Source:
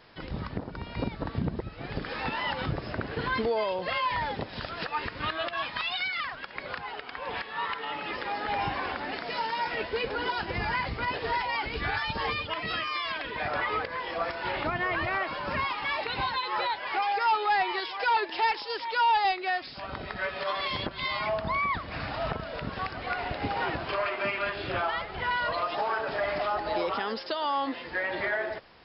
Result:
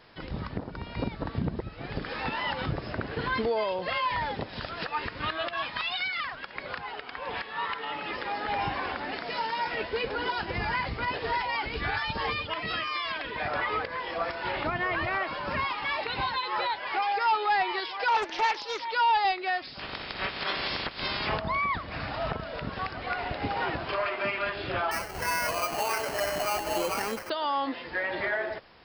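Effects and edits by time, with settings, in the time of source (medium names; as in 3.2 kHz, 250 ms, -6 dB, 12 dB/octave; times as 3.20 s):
18.08–18.83 s: loudspeaker Doppler distortion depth 0.41 ms
19.78–21.38 s: spectral peaks clipped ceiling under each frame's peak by 21 dB
24.91–27.30 s: sample-rate reducer 3.6 kHz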